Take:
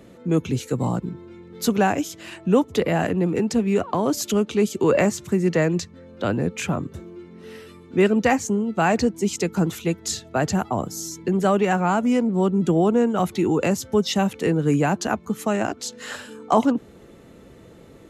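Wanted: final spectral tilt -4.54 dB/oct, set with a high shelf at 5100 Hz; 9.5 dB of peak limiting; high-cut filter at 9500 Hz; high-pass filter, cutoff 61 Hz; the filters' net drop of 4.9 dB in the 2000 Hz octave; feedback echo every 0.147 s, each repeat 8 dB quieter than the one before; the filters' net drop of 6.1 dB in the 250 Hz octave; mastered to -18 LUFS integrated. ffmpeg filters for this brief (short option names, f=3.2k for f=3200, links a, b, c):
-af "highpass=61,lowpass=9.5k,equalizer=f=250:t=o:g=-8.5,equalizer=f=2k:t=o:g=-7.5,highshelf=f=5.1k:g=6.5,alimiter=limit=-16.5dB:level=0:latency=1,aecho=1:1:147|294|441|588|735:0.398|0.159|0.0637|0.0255|0.0102,volume=9dB"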